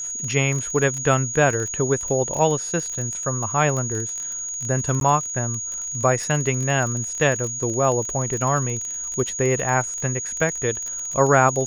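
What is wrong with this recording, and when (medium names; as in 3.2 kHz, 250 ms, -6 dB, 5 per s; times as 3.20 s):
crackle 23 per s -25 dBFS
whine 6.7 kHz -27 dBFS
5.00–5.01 s: dropout 12 ms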